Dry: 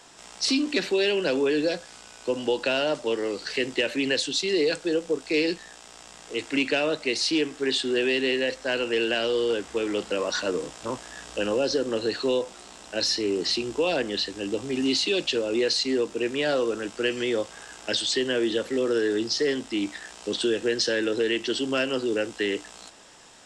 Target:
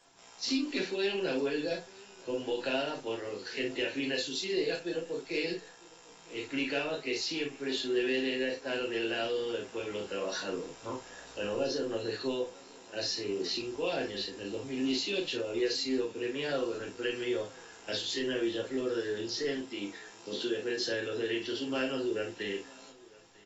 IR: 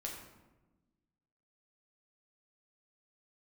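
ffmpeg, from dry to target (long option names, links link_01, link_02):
-filter_complex "[0:a]asettb=1/sr,asplit=3[link_01][link_02][link_03];[link_01]atrim=end=19.584[link_04];[link_02]atrim=start=19.58:end=20.87,asetpts=PTS-STARTPTS,afade=type=in:duration=0.004:curve=qsin,afade=type=out:start_time=1.286:duration=0.004:curve=qsin,highpass=140[link_05];[link_03]atrim=start=20.866[link_06];[link_04][link_05]acrossfade=duration=0.004:curve1=hsin:curve2=qsin[link_07];[link_07][link_06]acrossfade=duration=0.004:curve1=qsin:curve2=hsin,asplit=2[link_08][link_09];[link_09]acrusher=bits=6:mix=0:aa=0.000001,volume=-6dB[link_10];[link_08][link_10]amix=inputs=2:normalize=0,aecho=1:1:952:0.0631[link_11];[1:a]atrim=start_sample=2205,atrim=end_sample=3528,asetrate=52920,aresample=44100[link_12];[link_11][link_12]afir=irnorm=-1:irlink=0,volume=-8.5dB" -ar 24000 -c:a aac -b:a 24k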